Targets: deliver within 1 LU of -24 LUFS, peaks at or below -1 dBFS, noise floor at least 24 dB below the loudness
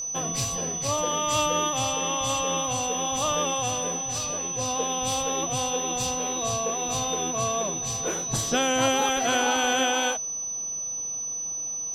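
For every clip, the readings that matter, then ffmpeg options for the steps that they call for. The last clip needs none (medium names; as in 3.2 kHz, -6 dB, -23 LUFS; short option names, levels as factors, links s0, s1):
steady tone 6 kHz; tone level -29 dBFS; loudness -25.0 LUFS; peak level -11.5 dBFS; loudness target -24.0 LUFS
-> -af "bandreject=f=6000:w=30"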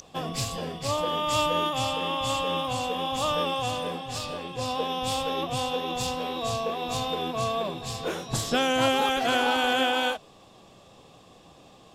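steady tone not found; loudness -27.5 LUFS; peak level -11.5 dBFS; loudness target -24.0 LUFS
-> -af "volume=1.5"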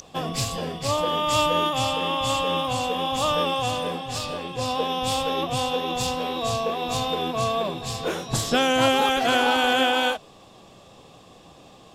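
loudness -24.0 LUFS; peak level -8.0 dBFS; noise floor -50 dBFS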